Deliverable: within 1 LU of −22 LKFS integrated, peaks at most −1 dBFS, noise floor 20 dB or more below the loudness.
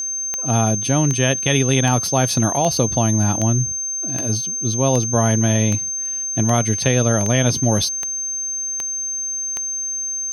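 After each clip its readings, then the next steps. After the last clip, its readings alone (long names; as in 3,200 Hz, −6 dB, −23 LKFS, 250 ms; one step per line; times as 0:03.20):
number of clicks 13; interfering tone 6,300 Hz; level of the tone −22 dBFS; integrated loudness −18.5 LKFS; sample peak −2.5 dBFS; target loudness −22.0 LKFS
→ click removal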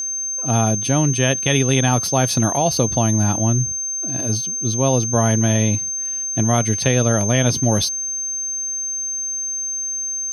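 number of clicks 0; interfering tone 6,300 Hz; level of the tone −22 dBFS
→ notch filter 6,300 Hz, Q 30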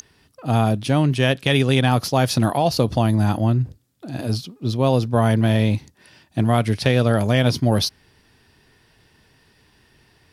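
interfering tone none found; integrated loudness −20.0 LKFS; sample peak −3.0 dBFS; target loudness −22.0 LKFS
→ level −2 dB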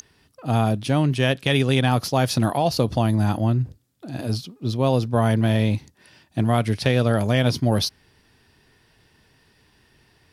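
integrated loudness −22.0 LKFS; sample peak −5.0 dBFS; background noise floor −61 dBFS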